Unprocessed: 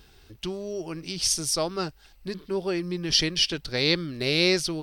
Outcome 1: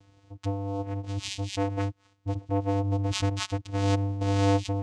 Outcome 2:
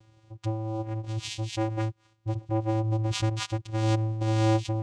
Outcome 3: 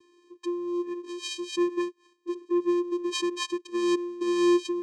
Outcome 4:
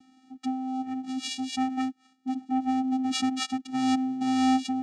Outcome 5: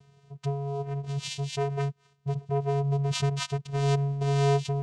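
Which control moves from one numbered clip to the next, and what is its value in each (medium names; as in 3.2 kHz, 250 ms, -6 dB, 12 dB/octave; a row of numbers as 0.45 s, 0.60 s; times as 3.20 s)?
vocoder, frequency: 99 Hz, 110 Hz, 350 Hz, 260 Hz, 140 Hz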